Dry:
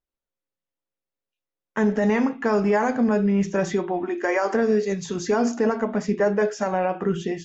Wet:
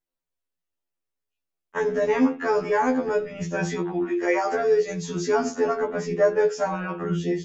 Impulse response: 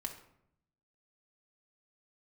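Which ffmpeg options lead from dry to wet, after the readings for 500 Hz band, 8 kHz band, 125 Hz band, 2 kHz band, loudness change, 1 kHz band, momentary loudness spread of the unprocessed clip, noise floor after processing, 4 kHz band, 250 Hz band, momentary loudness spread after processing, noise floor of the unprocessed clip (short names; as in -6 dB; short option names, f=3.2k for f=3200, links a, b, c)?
0.0 dB, n/a, -2.5 dB, -1.0 dB, -1.5 dB, -0.5 dB, 5 LU, -84 dBFS, -0.5 dB, -4.5 dB, 7 LU, under -85 dBFS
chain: -af "bandreject=f=71.85:t=h:w=4,bandreject=f=143.7:t=h:w=4,bandreject=f=215.55:t=h:w=4,bandreject=f=287.4:t=h:w=4,bandreject=f=359.25:t=h:w=4,bandreject=f=431.1:t=h:w=4,bandreject=f=502.95:t=h:w=4,bandreject=f=574.8:t=h:w=4,bandreject=f=646.65:t=h:w=4,bandreject=f=718.5:t=h:w=4,afftfilt=real='re*2*eq(mod(b,4),0)':imag='im*2*eq(mod(b,4),0)':win_size=2048:overlap=0.75,volume=2dB"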